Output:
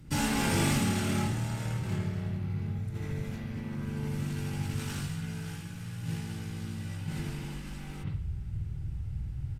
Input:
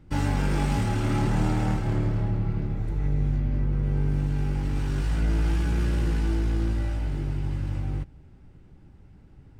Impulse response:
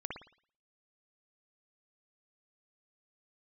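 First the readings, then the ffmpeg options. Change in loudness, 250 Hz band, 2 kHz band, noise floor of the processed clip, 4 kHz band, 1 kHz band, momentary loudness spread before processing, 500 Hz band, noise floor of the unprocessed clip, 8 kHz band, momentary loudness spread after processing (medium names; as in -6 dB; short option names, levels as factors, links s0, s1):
-7.0 dB, -4.0 dB, -0.5 dB, -41 dBFS, +3.0 dB, -4.0 dB, 5 LU, -5.5 dB, -51 dBFS, +7.0 dB, 11 LU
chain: -filter_complex "[0:a]asubboost=boost=9.5:cutoff=80,acrossover=split=590[s0][s1];[s1]crystalizer=i=6.5:c=0[s2];[s0][s2]amix=inputs=2:normalize=0,aresample=32000,aresample=44100[s3];[1:a]atrim=start_sample=2205,asetrate=48510,aresample=44100[s4];[s3][s4]afir=irnorm=-1:irlink=0,areverse,acompressor=threshold=0.0794:ratio=10,areverse,afftfilt=real='re*lt(hypot(re,im),0.251)':imag='im*lt(hypot(re,im),0.251)':win_size=1024:overlap=0.75,equalizer=f=130:w=0.68:g=11,volume=0.891"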